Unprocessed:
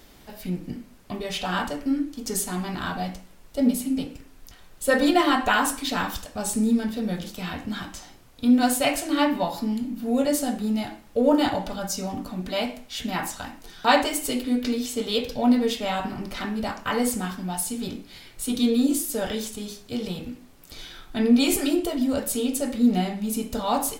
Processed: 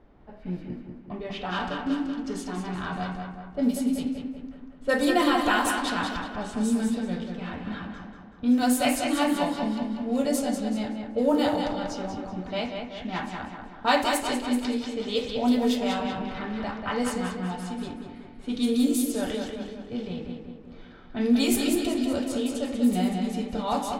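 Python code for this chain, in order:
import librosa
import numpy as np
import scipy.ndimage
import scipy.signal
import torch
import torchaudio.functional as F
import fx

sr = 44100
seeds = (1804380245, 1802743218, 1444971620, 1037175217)

y = fx.echo_feedback(x, sr, ms=190, feedback_pct=55, wet_db=-5.0)
y = fx.env_lowpass(y, sr, base_hz=1100.0, full_db=-16.0)
y = F.gain(torch.from_numpy(y), -3.5).numpy()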